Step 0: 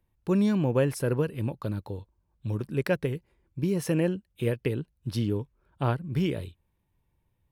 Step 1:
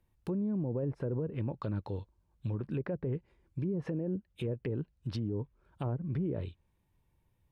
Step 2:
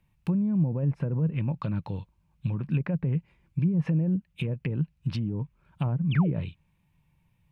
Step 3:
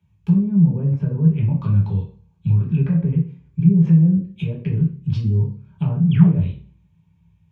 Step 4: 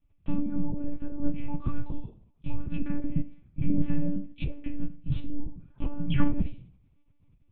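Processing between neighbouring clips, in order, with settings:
treble ducked by the level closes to 580 Hz, closed at -22.5 dBFS; limiter -27 dBFS, peak gain reduction 11 dB
fifteen-band EQ 160 Hz +12 dB, 400 Hz -7 dB, 1000 Hz +3 dB, 2500 Hz +10 dB; painted sound fall, 6.11–6.32, 230–3600 Hz -39 dBFS; gain +2 dB
reverb RT60 0.45 s, pre-delay 3 ms, DRR -4.5 dB; gain -8.5 dB
monotone LPC vocoder at 8 kHz 290 Hz; gain -5 dB

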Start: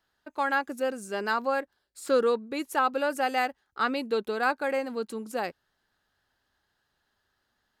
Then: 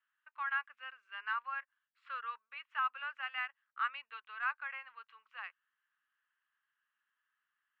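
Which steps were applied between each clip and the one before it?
Chebyshev band-pass 1100–2900 Hz, order 3; gain -6 dB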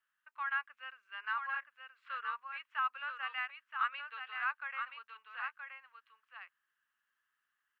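echo 0.974 s -5.5 dB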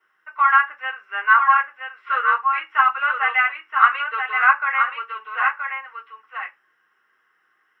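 reverb RT60 0.20 s, pre-delay 3 ms, DRR -5 dB; gain +3 dB

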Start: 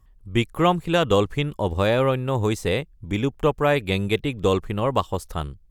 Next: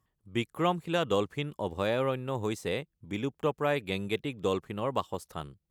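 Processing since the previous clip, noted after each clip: HPF 130 Hz 12 dB/oct; gain -8.5 dB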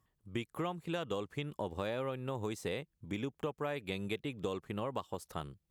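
compressor, threshold -34 dBFS, peak gain reduction 12 dB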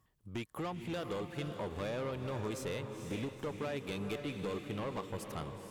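soft clip -36 dBFS, distortion -10 dB; diffused feedback echo 0.474 s, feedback 45%, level -6.5 dB; gain +2.5 dB

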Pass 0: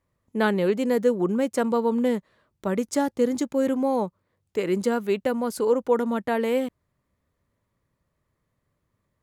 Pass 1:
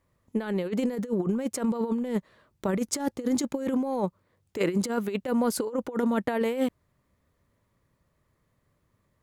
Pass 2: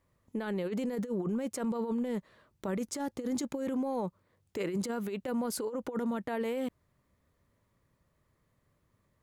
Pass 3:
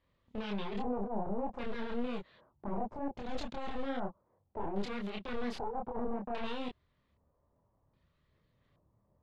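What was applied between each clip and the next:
negative-ratio compressor -26 dBFS, ratio -0.5
limiter -24 dBFS, peak gain reduction 10.5 dB; gain -2 dB
one-sided fold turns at -37.5 dBFS; LFO low-pass square 0.63 Hz 830–3600 Hz; chorus voices 4, 1.3 Hz, delay 27 ms, depth 3 ms

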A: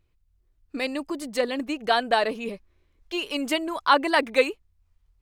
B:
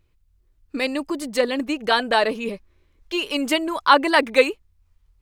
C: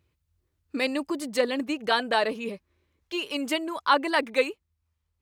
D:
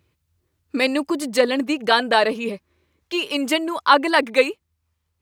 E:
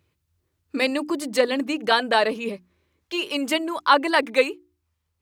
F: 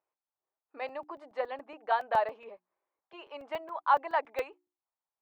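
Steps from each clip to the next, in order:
notch 710 Hz, Q 12; gain +4.5 dB
HPF 64 Hz 24 dB/oct; vocal rider within 3 dB 2 s; gain -5.5 dB
HPF 77 Hz; gain +7 dB
notches 60/120/180/240/300/360 Hz; gain -2.5 dB
ladder band-pass 890 Hz, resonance 50%; crackling interface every 0.14 s, samples 128, zero, from 0.89; mismatched tape noise reduction decoder only; gain +1 dB

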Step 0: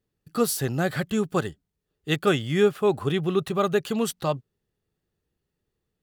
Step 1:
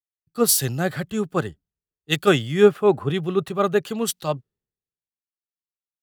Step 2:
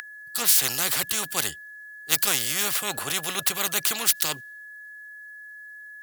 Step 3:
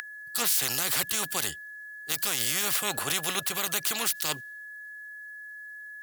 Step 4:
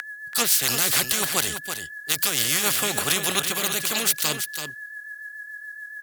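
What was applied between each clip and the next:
three-band expander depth 100%; gain +1.5 dB
whine 1700 Hz -36 dBFS; pre-emphasis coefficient 0.97; spectral compressor 4:1
limiter -14.5 dBFS, peak gain reduction 11 dB
rotary speaker horn 7 Hz; echo 0.332 s -8 dB; gain +8 dB

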